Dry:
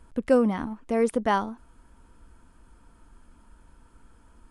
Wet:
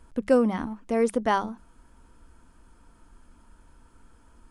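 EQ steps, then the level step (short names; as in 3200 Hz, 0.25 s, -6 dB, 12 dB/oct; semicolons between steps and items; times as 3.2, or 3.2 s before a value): bell 5900 Hz +2.5 dB; notches 50/100/150/200 Hz; 0.0 dB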